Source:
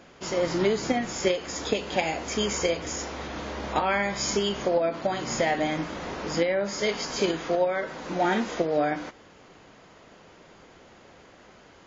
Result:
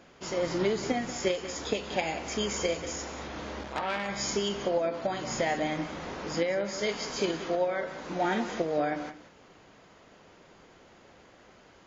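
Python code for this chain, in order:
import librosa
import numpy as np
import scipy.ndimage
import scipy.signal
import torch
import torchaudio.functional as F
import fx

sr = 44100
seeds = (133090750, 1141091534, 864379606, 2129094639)

y = x + 10.0 ** (-13.0 / 20.0) * np.pad(x, (int(184 * sr / 1000.0), 0))[:len(x)]
y = fx.transformer_sat(y, sr, knee_hz=2100.0, at=(3.63, 4.09))
y = F.gain(torch.from_numpy(y), -4.0).numpy()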